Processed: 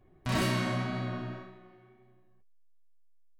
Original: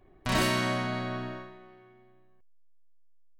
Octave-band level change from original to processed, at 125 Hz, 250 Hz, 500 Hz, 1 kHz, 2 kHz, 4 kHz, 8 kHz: +1.5, −1.0, −4.0, −4.5, −4.5, −4.5, −5.0 decibels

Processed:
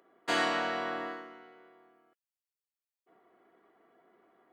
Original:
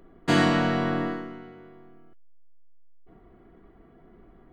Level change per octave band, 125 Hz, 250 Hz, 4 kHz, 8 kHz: −25.5 dB, −16.0 dB, −4.0 dB, can't be measured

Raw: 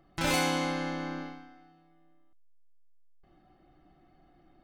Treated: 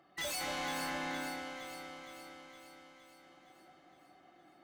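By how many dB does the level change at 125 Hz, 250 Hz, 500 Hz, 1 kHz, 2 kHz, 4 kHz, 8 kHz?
−15.5, −10.5, −8.0, −5.5, −4.5, −4.5, −4.0 decibels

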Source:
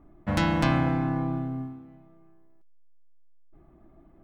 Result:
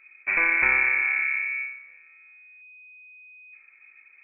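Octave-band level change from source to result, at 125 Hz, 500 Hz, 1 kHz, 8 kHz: below −25 dB, −9.0 dB, −4.5 dB, can't be measured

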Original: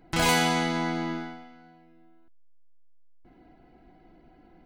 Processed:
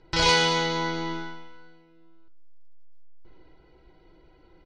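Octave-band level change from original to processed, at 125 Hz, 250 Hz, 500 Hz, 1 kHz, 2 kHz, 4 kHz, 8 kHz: −1.0, −3.5, +3.0, +1.0, +2.0, +6.0, 0.0 decibels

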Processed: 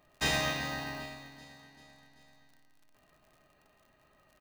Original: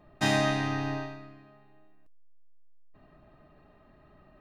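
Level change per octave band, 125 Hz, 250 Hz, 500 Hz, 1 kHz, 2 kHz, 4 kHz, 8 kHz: −9.0, −10.5, −7.5, −5.5, −1.5, +0.5, +1.5 decibels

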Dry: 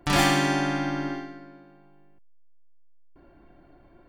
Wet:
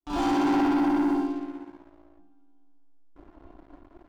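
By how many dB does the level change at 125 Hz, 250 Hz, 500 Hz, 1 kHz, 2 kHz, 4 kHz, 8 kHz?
−14.5 dB, +4.5 dB, −1.0 dB, −1.0 dB, −10.0 dB, below −10 dB, below −10 dB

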